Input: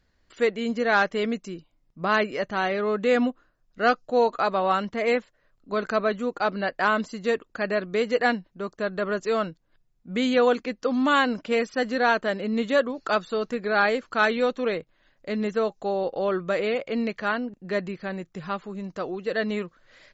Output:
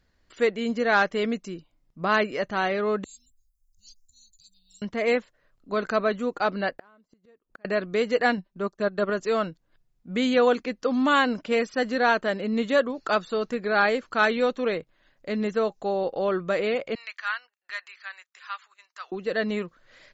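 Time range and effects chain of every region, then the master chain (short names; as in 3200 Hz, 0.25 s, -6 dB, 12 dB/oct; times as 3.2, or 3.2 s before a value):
3.04–4.82 inverse Chebyshev band-stop 290–1800 Hz, stop band 70 dB + high shelf 6000 Hz +9.5 dB
6.71–7.65 block floating point 7-bit + high shelf 2000 Hz -9.5 dB + flipped gate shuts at -28 dBFS, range -33 dB
8.37–9.1 transient shaper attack -2 dB, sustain -10 dB + comb 5.1 ms, depth 67%
16.95–19.12 HPF 1200 Hz 24 dB/oct + gate -58 dBFS, range -10 dB
whole clip: dry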